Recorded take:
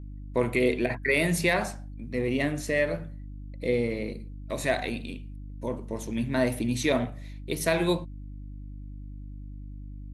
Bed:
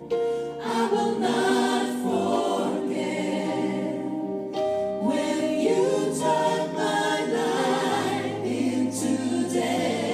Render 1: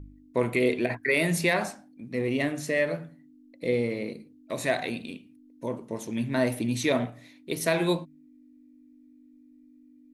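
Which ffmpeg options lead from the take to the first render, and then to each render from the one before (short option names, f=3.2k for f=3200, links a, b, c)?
-af "bandreject=f=50:t=h:w=4,bandreject=f=100:t=h:w=4,bandreject=f=150:t=h:w=4,bandreject=f=200:t=h:w=4"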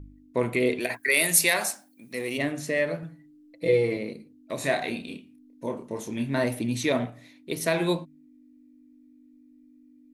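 -filter_complex "[0:a]asplit=3[a][b][c];[a]afade=t=out:st=0.79:d=0.02[d];[b]aemphasis=mode=production:type=riaa,afade=t=in:st=0.79:d=0.02,afade=t=out:st=2.37:d=0.02[e];[c]afade=t=in:st=2.37:d=0.02[f];[d][e][f]amix=inputs=3:normalize=0,asettb=1/sr,asplit=3[g][h][i];[g]atrim=end=3.024[j];[h]atrim=start=3.02:end=3.97,asetpts=PTS-STARTPTS,afade=t=in:d=0.004:c=qsin,afade=t=out:st=0.946:d=0.004:c=qsin,aecho=1:1:6.1:0.98,atrim=end_sample=41895[k];[i]atrim=start=3.966[l];[j][k]acrossfade=d=0.004:c1=hsin:c2=qsin[m];[m][l]acrossfade=d=0.004:c1=qsin:c2=hsin,asettb=1/sr,asplit=3[n][o][p];[n]atrim=end=4.594[q];[o]atrim=start=4.59:end=6.44,asetpts=PTS-STARTPTS,afade=t=in:d=0.004:c=qsin,afade=t=out:st=1.846:d=0.004:c=qsin,asplit=2[r][s];[s]adelay=29,volume=-5dB[t];[r][t]amix=inputs=2:normalize=0,atrim=end_sample=81585[u];[p]atrim=start=6.436[v];[q][u]acrossfade=d=0.004:c1=hsin:c2=qsin[w];[w][v]acrossfade=d=0.004:c1=qsin:c2=hsin"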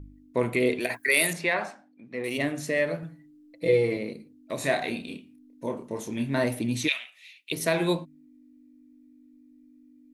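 -filter_complex "[0:a]asettb=1/sr,asplit=3[a][b][c];[a]atrim=end=1.334[d];[b]atrim=start=1.33:end=2.24,asetpts=PTS-STARTPTS,afade=t=in:d=0.004:c=qsin,afade=t=out:st=0.906:d=0.004:c=qsin,lowpass=2.1k[e];[c]atrim=start=2.236[f];[d][e]acrossfade=d=0.004:c1=hsin:c2=qsin[g];[g][f]acrossfade=d=0.004:c1=qsin:c2=hsin,asplit=3[h][i][j];[h]afade=t=out:st=6.87:d=0.02[k];[i]highpass=f=2.7k:t=q:w=6,afade=t=in:st=6.87:d=0.02,afade=t=out:st=7.51:d=0.02[l];[j]afade=t=in:st=7.51:d=0.02[m];[k][l][m]amix=inputs=3:normalize=0"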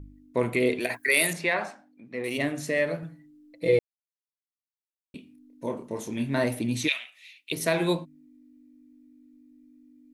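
-filter_complex "[0:a]asplit=3[a][b][c];[a]atrim=end=3.79,asetpts=PTS-STARTPTS,afade=t=out:st=3.786:d=0.004:c=hsin[d];[b]atrim=start=3.79:end=5.14,asetpts=PTS-STARTPTS,volume=0[e];[c]atrim=start=5.14,asetpts=PTS-STARTPTS,afade=t=in:d=0.004:c=hsin[f];[d][e][f]concat=n=3:v=0:a=1"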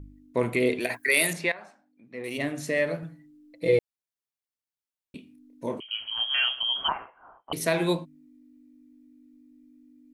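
-filter_complex "[0:a]asettb=1/sr,asplit=3[a][b][c];[a]atrim=end=5.804[d];[b]atrim=start=5.8:end=7.53,asetpts=PTS-STARTPTS,afade=t=in:d=0.004:c=qsin,afade=t=out:st=1.726:d=0.004:c=qsin,lowpass=f=2.9k:t=q:w=0.5098,lowpass=f=2.9k:t=q:w=0.6013,lowpass=f=2.9k:t=q:w=0.9,lowpass=f=2.9k:t=q:w=2.563,afreqshift=-3400[e];[c]atrim=start=7.526[f];[d][e]acrossfade=d=0.004:c1=hsin:c2=qsin[g];[g][f]acrossfade=d=0.004:c1=qsin:c2=hsin,asplit=2[h][i];[h]atrim=end=1.52,asetpts=PTS-STARTPTS,afade=t=out:st=1.516:d=0.004:c=hsin:silence=0.125893[j];[i]atrim=start=1.52,asetpts=PTS-STARTPTS,afade=t=in:d=1.2:silence=0.125893[k];[j][k]concat=n=2:v=0:a=1"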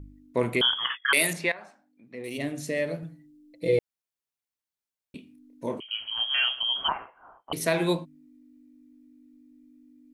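-filter_complex "[0:a]asettb=1/sr,asplit=3[a][b][c];[a]atrim=end=0.614[d];[b]atrim=start=0.61:end=1.13,asetpts=PTS-STARTPTS,afade=t=in:d=0.004:c=qsin,afade=t=out:st=0.516:d=0.004:c=qsin,lowpass=f=3.1k:t=q:w=0.5098,lowpass=f=3.1k:t=q:w=0.6013,lowpass=f=3.1k:t=q:w=0.9,lowpass=f=3.1k:t=q:w=2.563,afreqshift=-3600[e];[c]atrim=start=1.126[f];[d][e]acrossfade=d=0.004:c1=hsin:c2=qsin[g];[g][f]acrossfade=d=0.004:c1=qsin:c2=hsin,asettb=1/sr,asplit=3[h][i][j];[h]atrim=end=2.154[k];[i]atrim=start=2.15:end=3.78,asetpts=PTS-STARTPTS,afade=t=in:d=0.004:c=qsin,afade=t=out:st=1.626:d=0.004:c=qsin,equalizer=f=1.3k:t=o:w=1.7:g=-7.5[l];[j]atrim=start=3.776[m];[k][l]acrossfade=d=0.004:c1=hsin:c2=qsin[n];[n][m]acrossfade=d=0.004:c1=qsin:c2=hsin"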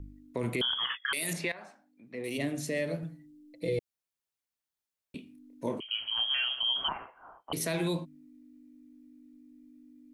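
-filter_complex "[0:a]acrossover=split=320|3000[a][b][c];[b]acompressor=threshold=-32dB:ratio=2.5[d];[a][d][c]amix=inputs=3:normalize=0,alimiter=limit=-22dB:level=0:latency=1:release=39"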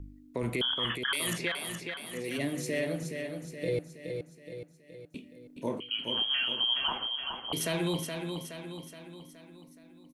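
-af "aecho=1:1:421|842|1263|1684|2105|2526:0.501|0.261|0.136|0.0705|0.0366|0.0191"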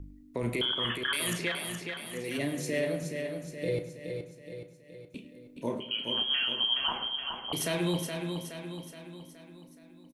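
-filter_complex "[0:a]asplit=2[a][b];[b]adelay=34,volume=-11.5dB[c];[a][c]amix=inputs=2:normalize=0,asplit=2[d][e];[e]adelay=104,lowpass=f=3.6k:p=1,volume=-13.5dB,asplit=2[f][g];[g]adelay=104,lowpass=f=3.6k:p=1,volume=0.52,asplit=2[h][i];[i]adelay=104,lowpass=f=3.6k:p=1,volume=0.52,asplit=2[j][k];[k]adelay=104,lowpass=f=3.6k:p=1,volume=0.52,asplit=2[l][m];[m]adelay=104,lowpass=f=3.6k:p=1,volume=0.52[n];[d][f][h][j][l][n]amix=inputs=6:normalize=0"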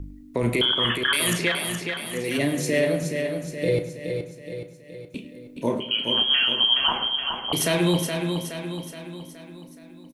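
-af "volume=8.5dB"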